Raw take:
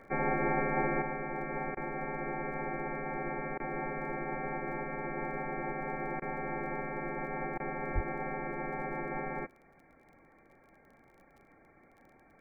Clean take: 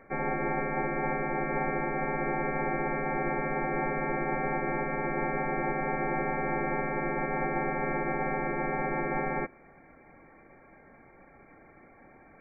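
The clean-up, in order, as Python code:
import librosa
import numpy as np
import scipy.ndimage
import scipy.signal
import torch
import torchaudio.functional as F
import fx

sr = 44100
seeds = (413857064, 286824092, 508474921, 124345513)

y = fx.fix_declick_ar(x, sr, threshold=6.5)
y = fx.highpass(y, sr, hz=140.0, slope=24, at=(7.94, 8.06), fade=0.02)
y = fx.fix_interpolate(y, sr, at_s=(1.75, 3.58, 6.2, 7.58), length_ms=18.0)
y = fx.gain(y, sr, db=fx.steps((0.0, 0.0), (1.02, 6.5)))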